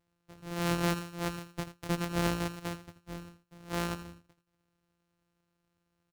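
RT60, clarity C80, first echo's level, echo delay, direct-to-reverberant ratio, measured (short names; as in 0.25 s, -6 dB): none, none, -13.0 dB, 82 ms, none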